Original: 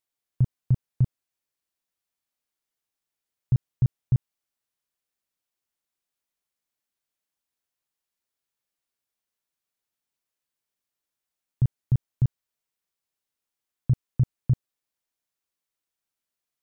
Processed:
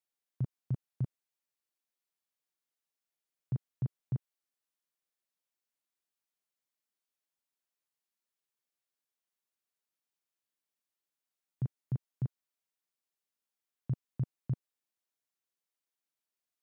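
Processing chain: high-pass 170 Hz; trim -5.5 dB

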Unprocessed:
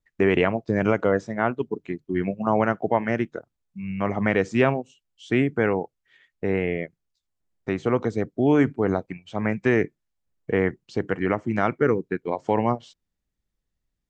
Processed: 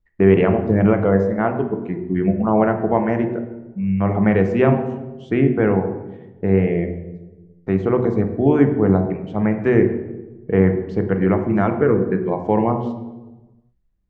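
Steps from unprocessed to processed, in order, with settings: low-pass 1.2 kHz 6 dB/octave; bass shelf 67 Hz +9 dB; on a send: reverberation RT60 1.1 s, pre-delay 3 ms, DRR 6 dB; on the sum: trim +3.5 dB

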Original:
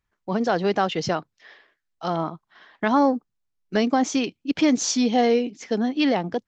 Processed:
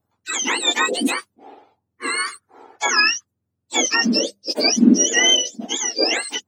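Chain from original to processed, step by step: spectrum inverted on a logarithmic axis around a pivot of 1.2 kHz; hum notches 50/100/150/200 Hz; trim +6.5 dB

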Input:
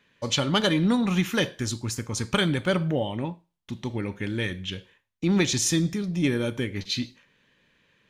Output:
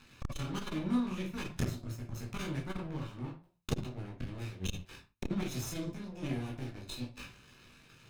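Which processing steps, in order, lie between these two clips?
comb filter that takes the minimum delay 0.78 ms; inverted gate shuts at -26 dBFS, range -30 dB; bass shelf 220 Hz +4.5 dB; waveshaping leveller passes 3; reverberation, pre-delay 11 ms, DRR -4 dB; transformer saturation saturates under 250 Hz

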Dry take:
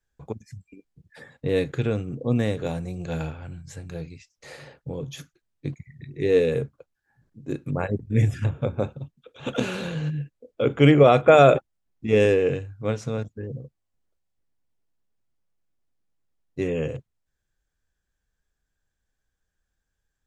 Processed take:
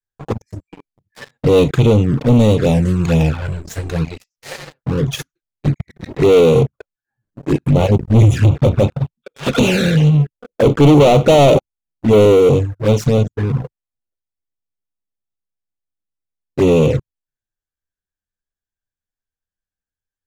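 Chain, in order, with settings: 10.17–12.77 s: peaking EQ 2.5 kHz -9 dB 1.5 oct; waveshaping leveller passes 5; touch-sensitive flanger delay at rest 10.2 ms, full sweep at -8.5 dBFS

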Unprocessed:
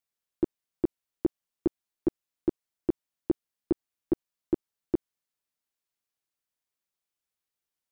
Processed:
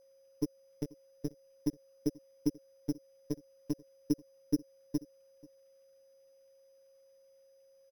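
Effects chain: high-order bell 990 Hz -12.5 dB 1.2 oct; comb 6.4 ms, depth 73%; compression, threshold -26 dBFS, peak gain reduction 9 dB; peak limiter -27.5 dBFS, peak gain reduction 10 dB; flange 0.46 Hz, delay 0.4 ms, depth 1.4 ms, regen -48%; vibrato 0.62 Hz 79 cents; delay 486 ms -23 dB; robot voice 146 Hz; whistle 540 Hz -74 dBFS; sample-and-hold 8×; trim +13.5 dB

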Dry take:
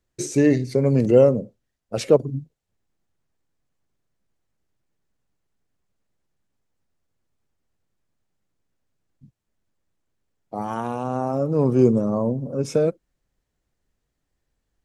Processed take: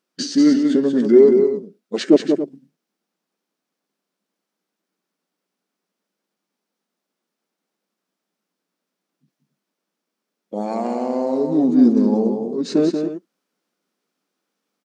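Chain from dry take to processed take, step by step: formant shift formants -5 st; brick-wall FIR high-pass 170 Hz; multi-tap echo 185/281 ms -6/-12.5 dB; trim +4 dB

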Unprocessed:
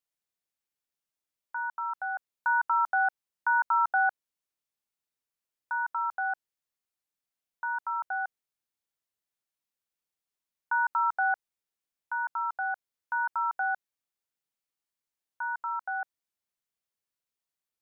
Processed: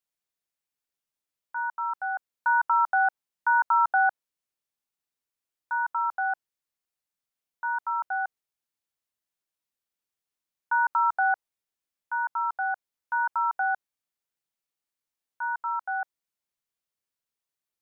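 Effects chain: dynamic bell 880 Hz, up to +4 dB, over -36 dBFS, Q 0.89

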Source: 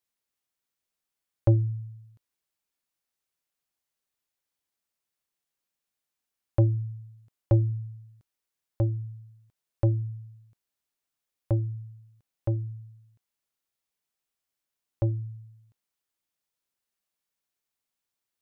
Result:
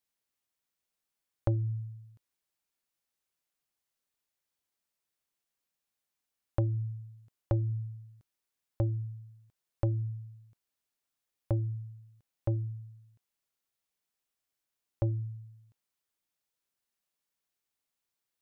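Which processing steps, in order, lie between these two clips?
compression 6:1, threshold -25 dBFS, peak gain reduction 8.5 dB; trim -1 dB

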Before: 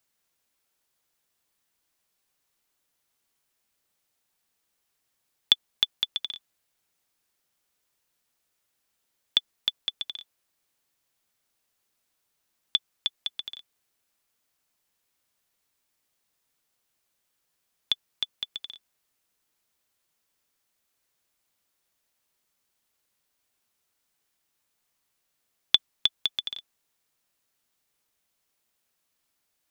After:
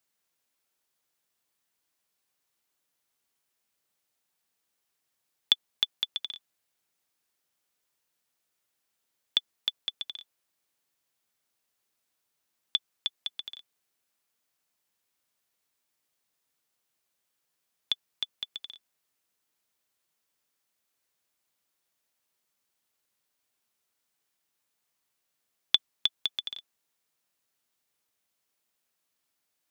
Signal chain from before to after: high-pass 99 Hz 6 dB/octave; trim -3 dB

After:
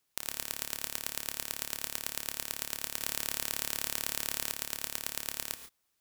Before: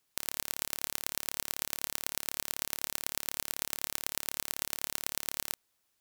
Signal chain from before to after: reverberation, pre-delay 3 ms, DRR 10 dB; 3.01–4.51 s: level flattener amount 70%; trim -1.5 dB

